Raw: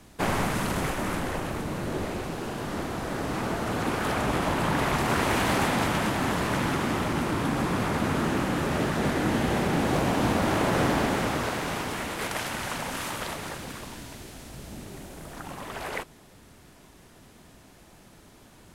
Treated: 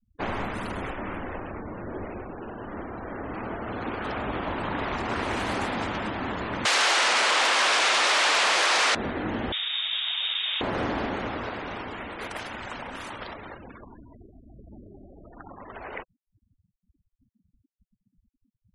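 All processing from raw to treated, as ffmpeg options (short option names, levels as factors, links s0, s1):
-filter_complex "[0:a]asettb=1/sr,asplit=3[s0][s1][s2];[s0]atrim=end=6.654[s3];[s1]atrim=start=6.65:end=8.95,asetpts=PTS-STARTPTS,afade=t=in:d=0.004:c=qsin,afade=t=out:st=2.296:d=0.004:c=qsin,aeval=exprs='0.2*sin(PI/2*7.94*val(0)/0.2)':c=same,highpass=610,lowpass=7700[s4];[s2]atrim=start=8.946[s5];[s3][s4]acrossfade=d=0.004:c1=hsin:c2=qsin[s6];[s6][s5]acrossfade=d=0.004:c1=qsin:c2=hsin,asettb=1/sr,asplit=3[s7][s8][s9];[s7]atrim=end=9.524[s10];[s8]atrim=start=9.52:end=10.61,asetpts=PTS-STARTPTS,afade=t=in:d=0.004:c=qsin,afade=t=out:st=1.086:d=0.004:c=qsin,highpass=150,lowpass=f=3300:t=q:w=0.5098,lowpass=f=3300:t=q:w=0.6013,lowpass=f=3300:t=q:w=0.9,lowpass=f=3300:t=q:w=2.563,afreqshift=-3900[s11];[s9]atrim=start=10.606[s12];[s10][s11]acrossfade=d=0.004:c1=hsin:c2=qsin[s13];[s13][s12]acrossfade=d=0.004:c1=qsin:c2=hsin,afftfilt=real='re*gte(hypot(re,im),0.0178)':imag='im*gte(hypot(re,im),0.0178)':win_size=1024:overlap=0.75,equalizer=f=150:w=4:g=-11.5,volume=0.668"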